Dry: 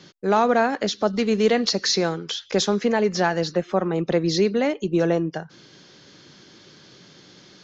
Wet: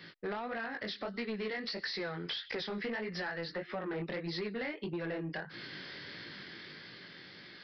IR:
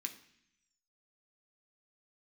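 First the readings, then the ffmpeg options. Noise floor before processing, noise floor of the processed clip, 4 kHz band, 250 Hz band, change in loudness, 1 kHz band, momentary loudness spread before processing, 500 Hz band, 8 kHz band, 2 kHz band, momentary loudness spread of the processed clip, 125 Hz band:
-51 dBFS, -53 dBFS, -13.0 dB, -17.0 dB, -17.0 dB, -19.0 dB, 5 LU, -18.0 dB, n/a, -9.0 dB, 10 LU, -15.5 dB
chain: -af "crystalizer=i=1:c=0,dynaudnorm=f=250:g=13:m=11.5dB,equalizer=f=1.9k:w=2.1:g=13,flanger=delay=17:depth=6.9:speed=1.6,acompressor=threshold=-28dB:ratio=16,aresample=11025,asoftclip=type=tanh:threshold=-27.5dB,aresample=44100,volume=-3.5dB"

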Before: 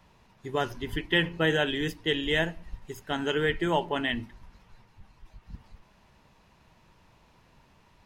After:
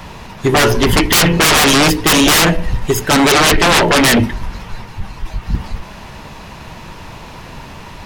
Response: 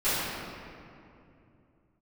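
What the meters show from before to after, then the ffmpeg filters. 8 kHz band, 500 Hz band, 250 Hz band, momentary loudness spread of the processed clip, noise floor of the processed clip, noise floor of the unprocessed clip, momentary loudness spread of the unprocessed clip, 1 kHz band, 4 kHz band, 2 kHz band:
+35.5 dB, +14.5 dB, +17.5 dB, 21 LU, -34 dBFS, -62 dBFS, 16 LU, +19.5 dB, +18.5 dB, +15.5 dB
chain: -af "bandreject=f=61.98:t=h:w=4,bandreject=f=123.96:t=h:w=4,bandreject=f=185.94:t=h:w=4,bandreject=f=247.92:t=h:w=4,bandreject=f=309.9:t=h:w=4,bandreject=f=371.88:t=h:w=4,bandreject=f=433.86:t=h:w=4,bandreject=f=495.84:t=h:w=4,bandreject=f=557.82:t=h:w=4,bandreject=f=619.8:t=h:w=4,aeval=exprs='0.224*sin(PI/2*7.94*val(0)/0.224)':c=same,volume=6dB"

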